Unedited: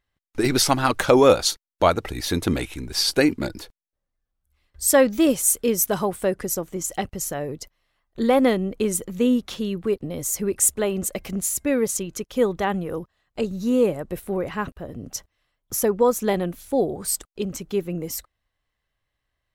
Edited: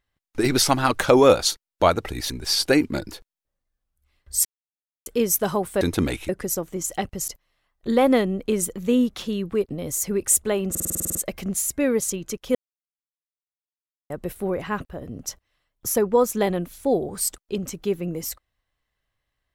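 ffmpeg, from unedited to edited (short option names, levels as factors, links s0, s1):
-filter_complex "[0:a]asplit=18[s0][s1][s2][s3][s4][s5][s6][s7][s8][s9][s10][s11][s12][s13][s14][s15][s16][s17];[s0]atrim=end=2.302[s18];[s1]atrim=start=2.778:end=4.93,asetpts=PTS-STARTPTS,afade=t=out:st=2.148:d=0.004:c=hsin[s19];[s2]atrim=start=4.93:end=5.54,asetpts=PTS-STARTPTS,volume=0[s20];[s3]atrim=start=5.54:end=6.292,asetpts=PTS-STARTPTS,afade=t=in:d=0.004:c=hsin[s21];[s4]atrim=start=2.298:end=2.782[s22];[s5]atrim=start=6.288:end=7.282[s23];[s6]atrim=start=7.598:end=11.072[s24];[s7]atrim=start=11.018:end=11.072[s25];[s8]atrim=start=11.018:end=11.072[s26];[s9]atrim=start=11.018:end=11.072[s27];[s10]atrim=start=11.018:end=11.072[s28];[s11]atrim=start=11.018:end=11.072[s29];[s12]atrim=start=11.018:end=11.072[s30];[s13]atrim=start=11.018:end=11.072[s31];[s14]atrim=start=11.018:end=11.072[s32];[s15]atrim=start=11.018:end=12.42,asetpts=PTS-STARTPTS,afade=t=out:st=1.398:d=0.004:c=hsin[s33];[s16]atrim=start=12.42:end=13.97,asetpts=PTS-STARTPTS,volume=0[s34];[s17]atrim=start=13.97,asetpts=PTS-STARTPTS,afade=t=in:d=0.004:c=hsin[s35];[s19][s20][s21]concat=n=3:v=0:a=1[s36];[s18][s36]acrossfade=d=0.004:c1=hsin:c2=hsin[s37];[s37][s22]acrossfade=d=0.004:c1=hsin:c2=hsin[s38];[s38][s23]acrossfade=d=0.004:c1=hsin:c2=hsin[s39];[s39][s24]acrossfade=d=0.004:c1=hsin:c2=hsin[s40];[s40][s25]acrossfade=d=0.004:c1=hsin:c2=hsin[s41];[s41][s26]acrossfade=d=0.004:c1=hsin:c2=hsin[s42];[s42][s27]acrossfade=d=0.004:c1=hsin:c2=hsin[s43];[s43][s28]acrossfade=d=0.004:c1=hsin:c2=hsin[s44];[s44][s29]acrossfade=d=0.004:c1=hsin:c2=hsin[s45];[s45][s30]acrossfade=d=0.004:c1=hsin:c2=hsin[s46];[s46][s31]acrossfade=d=0.004:c1=hsin:c2=hsin[s47];[s47][s32]acrossfade=d=0.004:c1=hsin:c2=hsin[s48];[s33][s34][s35]concat=n=3:v=0:a=1[s49];[s48][s49]acrossfade=d=0.004:c1=hsin:c2=hsin"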